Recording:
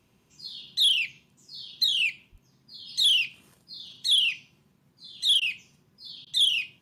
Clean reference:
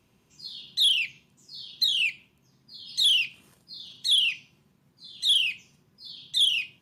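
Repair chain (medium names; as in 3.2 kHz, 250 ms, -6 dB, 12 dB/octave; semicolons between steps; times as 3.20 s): 2.31–2.43 s: high-pass 140 Hz 24 dB/octave; interpolate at 5.40/6.25 s, 14 ms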